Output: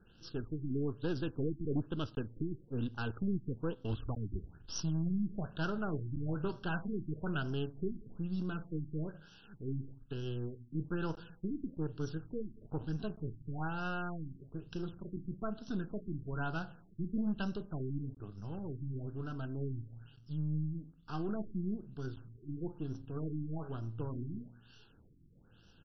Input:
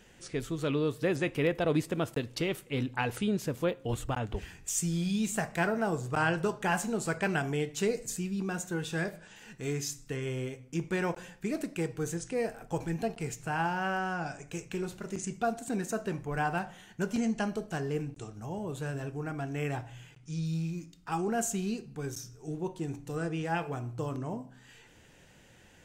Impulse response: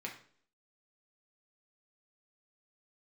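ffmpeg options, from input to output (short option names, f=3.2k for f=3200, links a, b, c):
-af "aeval=exprs='if(lt(val(0),0),0.447*val(0),val(0))':c=same,equalizer=f=740:t=o:w=1.6:g=-11,asetrate=41625,aresample=44100,atempo=1.05946,aresample=16000,aeval=exprs='clip(val(0),-1,0.0398)':c=same,aresample=44100,asuperstop=centerf=2100:order=12:qfactor=2,afftfilt=real='re*lt(b*sr/1024,360*pow(6100/360,0.5+0.5*sin(2*PI*1.1*pts/sr)))':imag='im*lt(b*sr/1024,360*pow(6100/360,0.5+0.5*sin(2*PI*1.1*pts/sr)))':win_size=1024:overlap=0.75,volume=1dB"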